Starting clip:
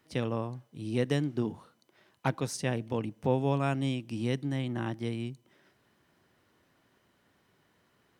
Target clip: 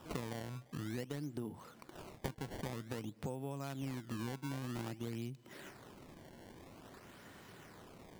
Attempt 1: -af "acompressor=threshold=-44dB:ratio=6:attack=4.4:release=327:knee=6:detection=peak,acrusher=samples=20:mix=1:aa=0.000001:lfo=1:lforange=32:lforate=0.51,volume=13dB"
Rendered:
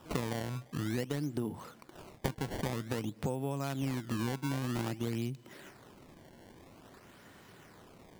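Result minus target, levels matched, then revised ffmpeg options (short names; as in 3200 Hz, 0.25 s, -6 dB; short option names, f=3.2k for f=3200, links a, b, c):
compressor: peak gain reduction -7 dB
-af "acompressor=threshold=-52.5dB:ratio=6:attack=4.4:release=327:knee=6:detection=peak,acrusher=samples=20:mix=1:aa=0.000001:lfo=1:lforange=32:lforate=0.51,volume=13dB"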